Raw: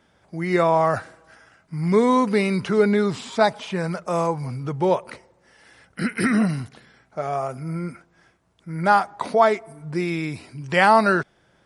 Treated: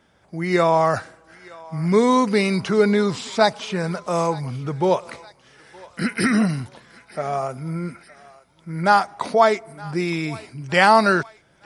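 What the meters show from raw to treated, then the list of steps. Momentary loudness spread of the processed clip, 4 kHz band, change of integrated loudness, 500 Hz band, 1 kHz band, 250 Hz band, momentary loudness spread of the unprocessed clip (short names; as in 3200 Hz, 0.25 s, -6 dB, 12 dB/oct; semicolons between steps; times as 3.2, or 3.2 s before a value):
15 LU, +5.0 dB, +1.5 dB, +1.0 dB, +1.0 dB, +1.0 dB, 14 LU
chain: dynamic EQ 5500 Hz, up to +7 dB, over -43 dBFS, Q 0.99; thinning echo 0.916 s, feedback 59%, high-pass 740 Hz, level -20 dB; gain +1 dB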